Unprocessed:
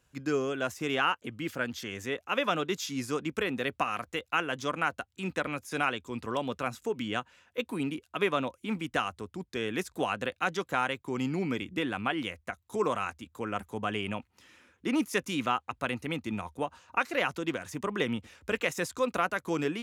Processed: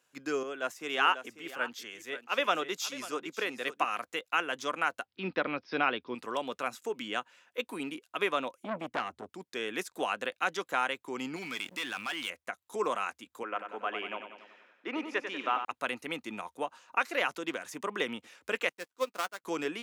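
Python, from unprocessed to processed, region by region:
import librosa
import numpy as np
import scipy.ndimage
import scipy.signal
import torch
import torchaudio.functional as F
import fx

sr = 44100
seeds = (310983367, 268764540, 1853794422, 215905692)

y = fx.chain(x, sr, fx.low_shelf(hz=130.0, db=-8.0),
    fx.echo_single(ms=544, db=-11.0),
    fx.band_widen(depth_pct=70), at=(0.43, 3.85))
y = fx.chain(y, sr, fx.steep_lowpass(hz=5400.0, slope=96),
    fx.low_shelf(hz=470.0, db=8.5), at=(5.05, 6.15))
y = fx.chain(y, sr, fx.tilt_eq(slope=-3.0),
    fx.transformer_sat(knee_hz=1300.0), at=(8.63, 9.29))
y = fx.chain(y, sr, fx.tone_stack(knobs='5-5-5'),
    fx.leveller(passes=3),
    fx.env_flatten(amount_pct=50), at=(11.36, 12.3))
y = fx.chain(y, sr, fx.bandpass_edges(low_hz=330.0, high_hz=2700.0),
    fx.echo_feedback(ms=94, feedback_pct=56, wet_db=-8), at=(13.43, 15.65))
y = fx.chain(y, sr, fx.dead_time(dead_ms=0.11),
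    fx.doubler(ms=15.0, db=-11.5),
    fx.upward_expand(threshold_db=-42.0, expansion=2.5), at=(18.69, 19.44))
y = scipy.signal.sosfilt(scipy.signal.butter(2, 240.0, 'highpass', fs=sr, output='sos'), y)
y = fx.low_shelf(y, sr, hz=310.0, db=-7.5)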